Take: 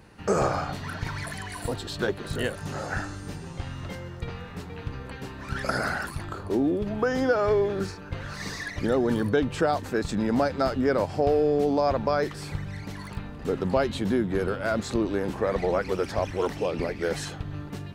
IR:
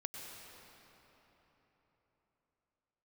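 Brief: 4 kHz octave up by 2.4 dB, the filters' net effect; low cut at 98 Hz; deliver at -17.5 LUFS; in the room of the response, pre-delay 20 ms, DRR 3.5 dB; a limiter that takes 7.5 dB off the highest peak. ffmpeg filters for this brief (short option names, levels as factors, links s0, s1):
-filter_complex "[0:a]highpass=98,equalizer=f=4000:t=o:g=3,alimiter=limit=0.133:level=0:latency=1,asplit=2[s0][s1];[1:a]atrim=start_sample=2205,adelay=20[s2];[s1][s2]afir=irnorm=-1:irlink=0,volume=0.75[s3];[s0][s3]amix=inputs=2:normalize=0,volume=3.35"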